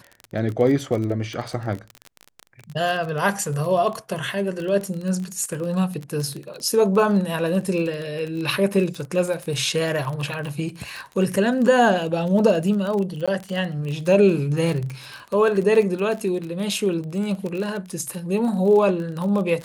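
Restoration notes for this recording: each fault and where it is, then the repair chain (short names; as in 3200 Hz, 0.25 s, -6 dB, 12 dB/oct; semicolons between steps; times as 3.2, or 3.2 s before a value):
crackle 24/s -26 dBFS
13.26–13.28 gap 16 ms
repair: de-click; interpolate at 13.26, 16 ms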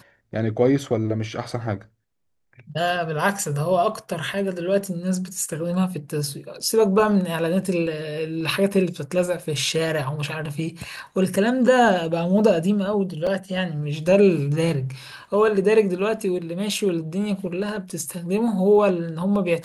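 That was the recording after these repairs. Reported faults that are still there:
none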